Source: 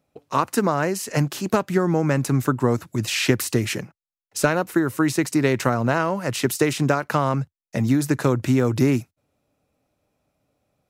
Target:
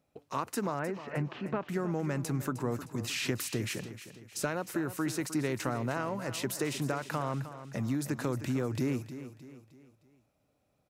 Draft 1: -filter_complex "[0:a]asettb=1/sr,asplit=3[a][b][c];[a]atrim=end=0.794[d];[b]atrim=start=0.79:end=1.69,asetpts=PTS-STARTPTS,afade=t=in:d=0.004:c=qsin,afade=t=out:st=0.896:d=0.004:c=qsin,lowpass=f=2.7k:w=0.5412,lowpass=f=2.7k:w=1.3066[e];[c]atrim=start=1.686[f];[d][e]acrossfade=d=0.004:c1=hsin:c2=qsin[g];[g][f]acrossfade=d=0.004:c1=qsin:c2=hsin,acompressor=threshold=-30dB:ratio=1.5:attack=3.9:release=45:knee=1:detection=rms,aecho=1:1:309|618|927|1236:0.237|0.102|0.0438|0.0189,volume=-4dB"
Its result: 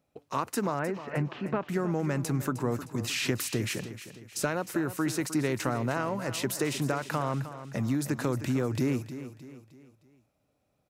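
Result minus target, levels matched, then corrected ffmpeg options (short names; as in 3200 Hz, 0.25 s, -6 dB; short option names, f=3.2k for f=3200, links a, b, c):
compressor: peak gain reduction -3.5 dB
-filter_complex "[0:a]asettb=1/sr,asplit=3[a][b][c];[a]atrim=end=0.794[d];[b]atrim=start=0.79:end=1.69,asetpts=PTS-STARTPTS,afade=t=in:d=0.004:c=qsin,afade=t=out:st=0.896:d=0.004:c=qsin,lowpass=f=2.7k:w=0.5412,lowpass=f=2.7k:w=1.3066[e];[c]atrim=start=1.686[f];[d][e]acrossfade=d=0.004:c1=hsin:c2=qsin[g];[g][f]acrossfade=d=0.004:c1=qsin:c2=hsin,acompressor=threshold=-40dB:ratio=1.5:attack=3.9:release=45:knee=1:detection=rms,aecho=1:1:309|618|927|1236:0.237|0.102|0.0438|0.0189,volume=-4dB"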